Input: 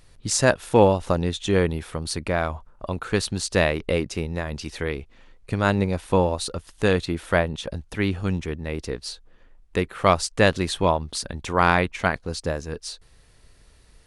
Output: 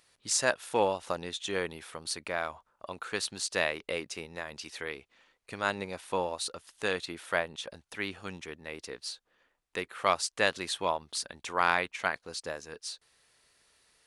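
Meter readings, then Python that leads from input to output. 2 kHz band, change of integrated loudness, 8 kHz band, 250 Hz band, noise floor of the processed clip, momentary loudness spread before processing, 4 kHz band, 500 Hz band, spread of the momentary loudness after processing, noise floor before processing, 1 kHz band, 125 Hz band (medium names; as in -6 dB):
-5.5 dB, -9.0 dB, -4.5 dB, -16.5 dB, -78 dBFS, 13 LU, -4.5 dB, -11.0 dB, 14 LU, -54 dBFS, -7.5 dB, -22.0 dB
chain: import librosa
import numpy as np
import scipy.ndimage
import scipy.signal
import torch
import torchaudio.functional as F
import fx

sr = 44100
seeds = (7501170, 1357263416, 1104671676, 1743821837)

y = fx.highpass(x, sr, hz=950.0, slope=6)
y = F.gain(torch.from_numpy(y), -4.5).numpy()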